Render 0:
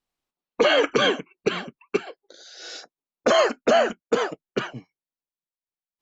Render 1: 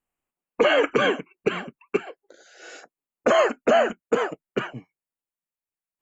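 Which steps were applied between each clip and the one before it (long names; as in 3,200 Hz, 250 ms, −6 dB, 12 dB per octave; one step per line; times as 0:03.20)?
flat-topped bell 4,500 Hz −13 dB 1 octave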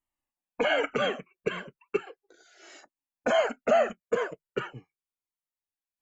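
flanger whose copies keep moving one way falling 0.37 Hz
level −1.5 dB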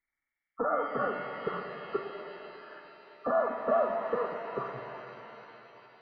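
hearing-aid frequency compression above 1,100 Hz 4 to 1
reverb with rising layers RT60 3.7 s, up +7 semitones, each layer −8 dB, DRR 4.5 dB
level −5 dB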